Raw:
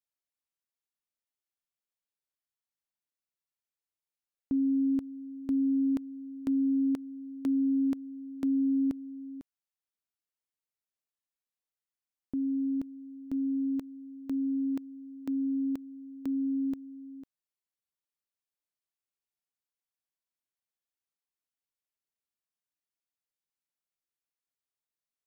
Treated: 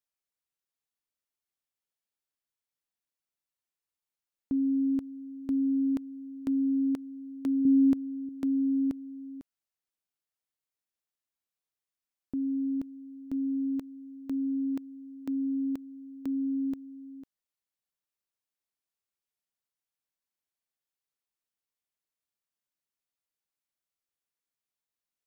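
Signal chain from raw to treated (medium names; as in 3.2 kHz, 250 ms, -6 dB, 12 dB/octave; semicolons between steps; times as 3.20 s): 7.65–8.29 s: bass shelf 410 Hz +8.5 dB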